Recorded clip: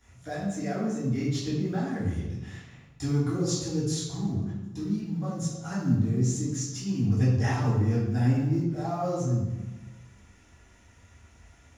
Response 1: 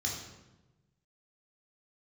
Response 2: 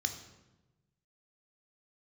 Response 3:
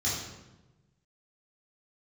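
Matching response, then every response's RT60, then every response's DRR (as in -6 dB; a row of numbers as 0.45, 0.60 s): 3; 1.1, 1.1, 1.1 s; -3.0, 5.5, -9.0 dB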